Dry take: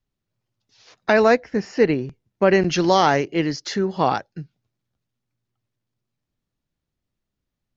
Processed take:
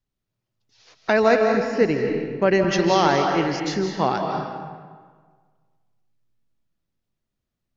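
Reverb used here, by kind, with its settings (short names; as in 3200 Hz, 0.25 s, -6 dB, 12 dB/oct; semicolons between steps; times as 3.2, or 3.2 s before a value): digital reverb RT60 1.6 s, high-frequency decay 0.7×, pre-delay 0.12 s, DRR 2.5 dB; gain -2.5 dB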